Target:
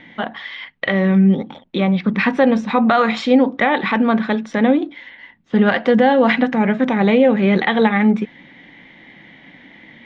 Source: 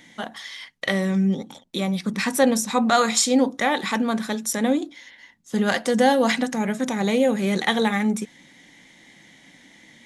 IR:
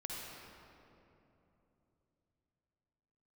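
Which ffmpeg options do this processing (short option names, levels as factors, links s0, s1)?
-af "lowpass=f=3000:w=0.5412,lowpass=f=3000:w=1.3066,alimiter=limit=0.237:level=0:latency=1:release=151,volume=2.51"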